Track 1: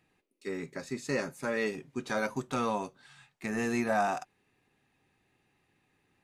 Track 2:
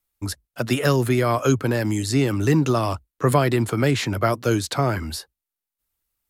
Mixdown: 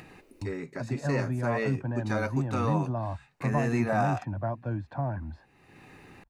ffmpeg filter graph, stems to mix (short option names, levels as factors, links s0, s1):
-filter_complex "[0:a]bandreject=f=3300:w=8,volume=1.12[s0];[1:a]lowpass=1100,aecho=1:1:1.2:0.83,adelay=200,volume=0.266[s1];[s0][s1]amix=inputs=2:normalize=0,highshelf=f=4100:g=-7.5,acompressor=mode=upward:threshold=0.0224:ratio=2.5"